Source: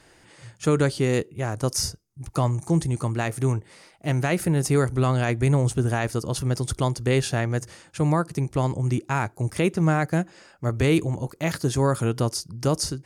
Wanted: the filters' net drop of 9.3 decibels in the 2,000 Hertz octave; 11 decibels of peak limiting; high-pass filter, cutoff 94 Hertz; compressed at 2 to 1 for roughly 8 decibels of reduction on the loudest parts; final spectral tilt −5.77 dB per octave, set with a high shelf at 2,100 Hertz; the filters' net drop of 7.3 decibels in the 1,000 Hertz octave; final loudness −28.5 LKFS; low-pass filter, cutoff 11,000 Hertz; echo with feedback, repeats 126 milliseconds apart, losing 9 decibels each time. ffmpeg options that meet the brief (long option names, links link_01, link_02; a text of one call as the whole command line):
ffmpeg -i in.wav -af "highpass=94,lowpass=11000,equalizer=frequency=1000:width_type=o:gain=-7.5,equalizer=frequency=2000:width_type=o:gain=-7.5,highshelf=frequency=2100:gain=-3.5,acompressor=threshold=-32dB:ratio=2,alimiter=level_in=4dB:limit=-24dB:level=0:latency=1,volume=-4dB,aecho=1:1:126|252|378|504:0.355|0.124|0.0435|0.0152,volume=9.5dB" out.wav